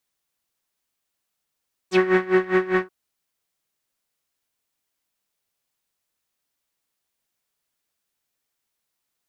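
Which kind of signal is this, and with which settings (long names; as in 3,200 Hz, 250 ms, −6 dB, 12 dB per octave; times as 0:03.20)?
subtractive patch with tremolo F#4, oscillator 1 triangle, noise −10.5 dB, filter lowpass, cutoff 1,400 Hz, Q 3.7, filter envelope 2.5 octaves, filter decay 0.06 s, filter sustain 15%, attack 118 ms, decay 0.15 s, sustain −8 dB, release 0.08 s, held 0.90 s, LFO 5 Hz, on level 19.5 dB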